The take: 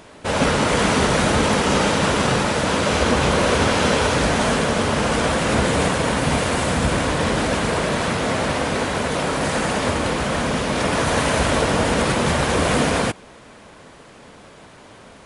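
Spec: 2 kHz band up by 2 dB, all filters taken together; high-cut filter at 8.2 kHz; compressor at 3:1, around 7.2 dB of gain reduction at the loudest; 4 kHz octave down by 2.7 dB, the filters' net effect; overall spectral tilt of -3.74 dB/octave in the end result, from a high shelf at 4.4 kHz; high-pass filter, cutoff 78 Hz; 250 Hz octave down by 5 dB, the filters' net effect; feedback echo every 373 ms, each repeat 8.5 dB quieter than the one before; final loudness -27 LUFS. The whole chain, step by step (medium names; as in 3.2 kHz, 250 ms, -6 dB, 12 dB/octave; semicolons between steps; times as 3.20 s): high-pass 78 Hz; low-pass 8.2 kHz; peaking EQ 250 Hz -6.5 dB; peaking EQ 2 kHz +3.5 dB; peaking EQ 4 kHz -7.5 dB; treble shelf 4.4 kHz +5 dB; compression 3:1, threshold -25 dBFS; feedback delay 373 ms, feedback 38%, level -8.5 dB; trim -1.5 dB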